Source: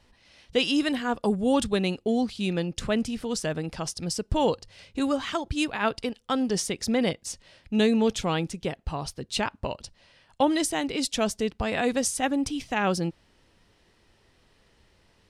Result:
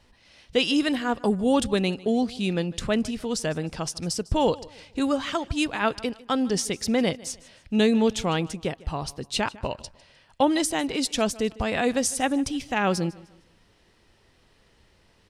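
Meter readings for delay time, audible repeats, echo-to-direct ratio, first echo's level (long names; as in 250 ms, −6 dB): 152 ms, 2, −20.5 dB, −21.0 dB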